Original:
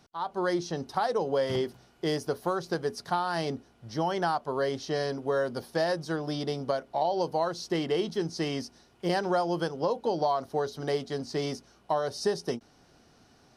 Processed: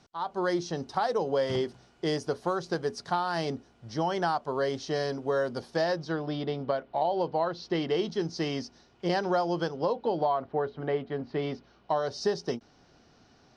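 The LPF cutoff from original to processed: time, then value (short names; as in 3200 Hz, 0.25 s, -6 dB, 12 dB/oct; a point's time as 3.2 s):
LPF 24 dB/oct
5.67 s 8400 Hz
6.35 s 3800 Hz
7.46 s 3800 Hz
8 s 6300 Hz
9.65 s 6300 Hz
10.48 s 2700 Hz
11.23 s 2700 Hz
12.08 s 6200 Hz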